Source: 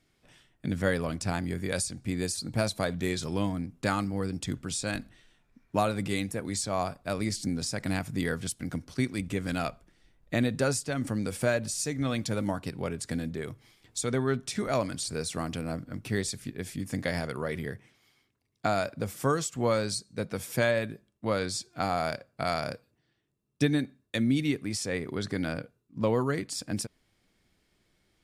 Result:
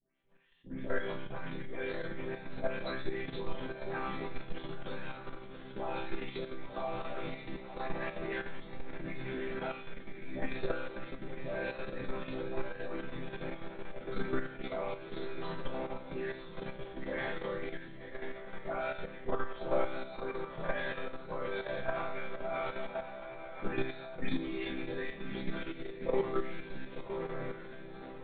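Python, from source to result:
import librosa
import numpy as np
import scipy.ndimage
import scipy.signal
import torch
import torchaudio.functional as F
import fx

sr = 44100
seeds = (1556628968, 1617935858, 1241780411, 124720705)

p1 = fx.spec_delay(x, sr, highs='late', ms=336)
p2 = fx.rider(p1, sr, range_db=5, speed_s=2.0)
p3 = p1 + (p2 * librosa.db_to_amplitude(-1.0))
p4 = fx.low_shelf(p3, sr, hz=100.0, db=4.5)
p5 = p4 + fx.echo_diffused(p4, sr, ms=1072, feedback_pct=45, wet_db=-4.5, dry=0)
p6 = fx.lpc_vocoder(p5, sr, seeds[0], excitation='whisper', order=10)
p7 = fx.resonator_bank(p6, sr, root=48, chord='major', decay_s=0.69)
p8 = fx.level_steps(p7, sr, step_db=9)
p9 = fx.peak_eq(p8, sr, hz=71.0, db=-11.5, octaves=2.9)
y = p9 * librosa.db_to_amplitude(11.0)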